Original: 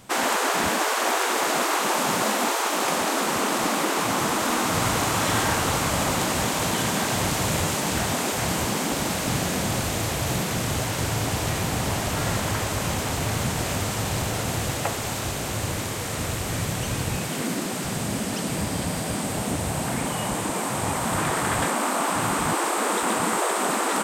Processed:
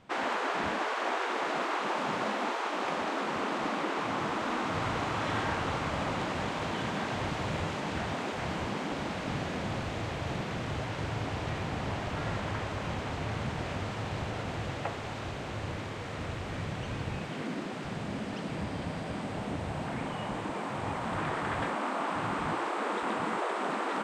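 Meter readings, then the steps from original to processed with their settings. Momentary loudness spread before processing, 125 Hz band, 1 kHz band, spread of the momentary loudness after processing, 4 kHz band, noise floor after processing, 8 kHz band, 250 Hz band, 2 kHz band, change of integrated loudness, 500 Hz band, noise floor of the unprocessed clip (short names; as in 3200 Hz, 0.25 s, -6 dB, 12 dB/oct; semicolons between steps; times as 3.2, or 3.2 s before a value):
5 LU, -8.0 dB, -7.5 dB, 5 LU, -12.0 dB, -38 dBFS, -23.5 dB, -8.0 dB, -8.0 dB, -9.5 dB, -7.5 dB, -29 dBFS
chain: LPF 3100 Hz 12 dB/oct; notches 60/120/180/240 Hz; gain -7.5 dB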